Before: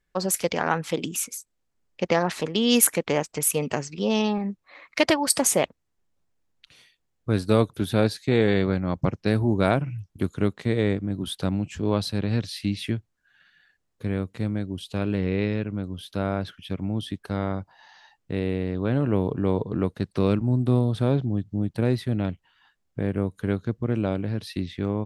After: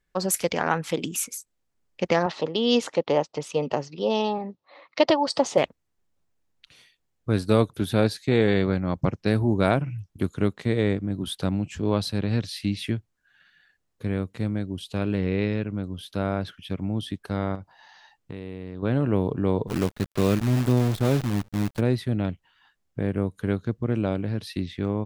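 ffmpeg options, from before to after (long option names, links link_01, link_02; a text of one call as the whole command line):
ffmpeg -i in.wav -filter_complex "[0:a]asettb=1/sr,asplit=3[link_01][link_02][link_03];[link_01]atrim=end=2.264[link_04];[link_02]atrim=start=2.26:end=5.58,asetpts=PTS-STARTPTS,afade=type=in:duration=0.004:curve=qsin,afade=type=out:start_time=3.316:duration=0.004:curve=qsin,highpass=120,equalizer=frequency=200:width_type=q:width=4:gain=-7,equalizer=frequency=550:width_type=q:width=4:gain=5,equalizer=frequency=850:width_type=q:width=4:gain=4,equalizer=frequency=1600:width_type=q:width=4:gain=-8,equalizer=frequency=2300:width_type=q:width=4:gain=-8,lowpass=frequency=5000:width=0.5412,lowpass=frequency=5000:width=1.3066[link_05];[link_03]atrim=start=5.576[link_06];[link_04][link_05]acrossfade=duration=0.004:curve1=hsin:curve2=qsin[link_07];[link_07][link_06]acrossfade=duration=0.004:curve1=qsin:curve2=hsin,asettb=1/sr,asplit=3[link_08][link_09][link_10];[link_08]atrim=end=17.554[link_11];[link_09]atrim=start=17.55:end=18.83,asetpts=PTS-STARTPTS,afade=type=in:duration=0.004:curve=qsin,afade=type=out:start_time=1.276:duration=0.004:curve=qsin,acompressor=threshold=-32dB:ratio=5:attack=3.2:release=140:knee=1:detection=peak[link_12];[link_10]atrim=start=18.826[link_13];[link_11][link_12]acrossfade=duration=0.004:curve1=hsin:curve2=qsin[link_14];[link_14][link_13]acrossfade=duration=0.004:curve1=qsin:curve2=hsin,asplit=3[link_15][link_16][link_17];[link_15]afade=type=out:start_time=19.67:duration=0.02[link_18];[link_16]acrusher=bits=6:dc=4:mix=0:aa=0.000001,afade=type=in:start_time=19.67:duration=0.02,afade=type=out:start_time=21.79:duration=0.02[link_19];[link_17]afade=type=in:start_time=21.79:duration=0.02[link_20];[link_18][link_19][link_20]amix=inputs=3:normalize=0" out.wav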